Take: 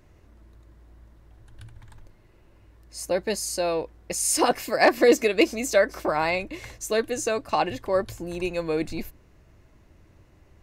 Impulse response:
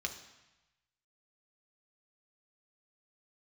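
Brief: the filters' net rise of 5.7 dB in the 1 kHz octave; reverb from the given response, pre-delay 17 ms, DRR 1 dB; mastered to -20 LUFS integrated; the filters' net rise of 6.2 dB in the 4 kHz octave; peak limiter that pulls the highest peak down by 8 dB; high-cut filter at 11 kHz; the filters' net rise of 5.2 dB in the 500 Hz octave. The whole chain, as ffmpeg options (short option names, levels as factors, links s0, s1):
-filter_complex "[0:a]lowpass=11000,equalizer=f=500:t=o:g=4.5,equalizer=f=1000:t=o:g=5.5,equalizer=f=4000:t=o:g=7.5,alimiter=limit=0.316:level=0:latency=1,asplit=2[s0][s1];[1:a]atrim=start_sample=2205,adelay=17[s2];[s1][s2]afir=irnorm=-1:irlink=0,volume=0.75[s3];[s0][s3]amix=inputs=2:normalize=0,volume=1.06"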